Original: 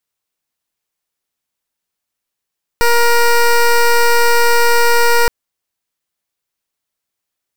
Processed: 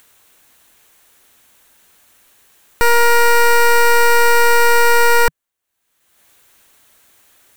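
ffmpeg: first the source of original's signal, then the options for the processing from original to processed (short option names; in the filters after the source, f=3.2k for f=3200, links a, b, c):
-f lavfi -i "aevalsrc='0.316*(2*lt(mod(472*t,1),0.14)-1)':d=2.47:s=44100"
-af "equalizer=f=160:t=o:w=0.33:g=-7,equalizer=f=1.6k:t=o:w=0.33:g=3,equalizer=f=5k:t=o:w=0.33:g=-7,acompressor=mode=upward:threshold=-30dB:ratio=2.5"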